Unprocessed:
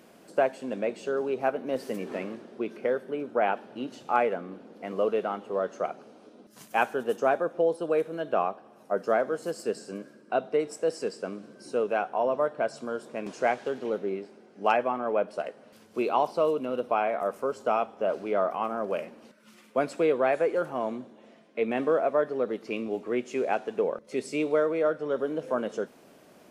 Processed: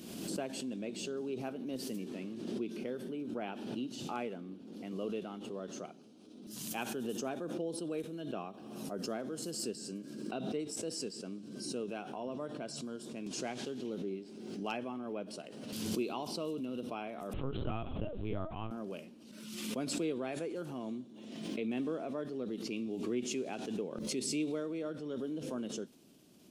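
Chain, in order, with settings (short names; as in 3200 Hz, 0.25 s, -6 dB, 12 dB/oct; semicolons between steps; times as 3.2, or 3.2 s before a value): 17.33–18.71 LPC vocoder at 8 kHz pitch kept; band shelf 1000 Hz -13.5 dB 2.6 oct; backwards sustainer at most 37 dB/s; gain -4 dB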